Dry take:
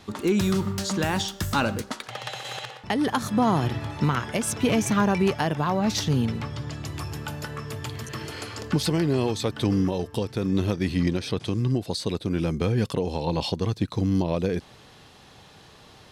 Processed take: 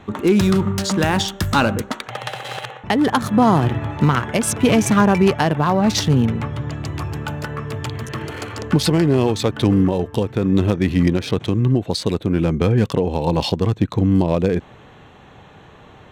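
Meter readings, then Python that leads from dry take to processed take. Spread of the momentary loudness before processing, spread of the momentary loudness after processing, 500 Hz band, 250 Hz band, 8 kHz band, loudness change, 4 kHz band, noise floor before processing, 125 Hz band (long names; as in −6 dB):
11 LU, 12 LU, +7.5 dB, +7.5 dB, +5.5 dB, +7.5 dB, +5.5 dB, −51 dBFS, +7.5 dB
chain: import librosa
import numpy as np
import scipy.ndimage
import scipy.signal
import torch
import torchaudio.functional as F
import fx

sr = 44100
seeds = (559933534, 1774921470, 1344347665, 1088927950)

y = fx.wiener(x, sr, points=9)
y = y * 10.0 ** (7.5 / 20.0)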